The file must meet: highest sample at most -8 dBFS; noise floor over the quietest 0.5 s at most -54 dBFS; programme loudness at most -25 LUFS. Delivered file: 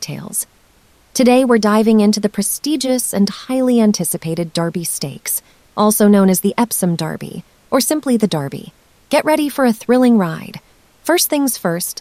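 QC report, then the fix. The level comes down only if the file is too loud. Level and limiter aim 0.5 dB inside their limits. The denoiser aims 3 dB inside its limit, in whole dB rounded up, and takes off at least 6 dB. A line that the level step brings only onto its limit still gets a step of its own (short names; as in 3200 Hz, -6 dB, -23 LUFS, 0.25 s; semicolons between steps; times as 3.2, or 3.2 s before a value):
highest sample -2.0 dBFS: fail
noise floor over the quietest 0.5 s -52 dBFS: fail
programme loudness -15.5 LUFS: fail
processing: gain -10 dB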